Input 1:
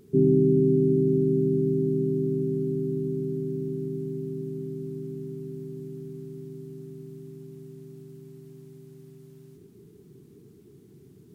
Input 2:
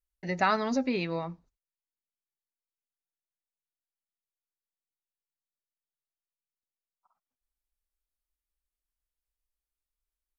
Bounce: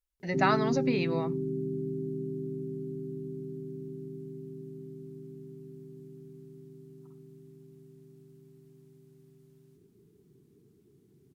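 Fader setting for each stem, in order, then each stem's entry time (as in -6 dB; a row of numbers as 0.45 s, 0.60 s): -10.0 dB, -0.5 dB; 0.20 s, 0.00 s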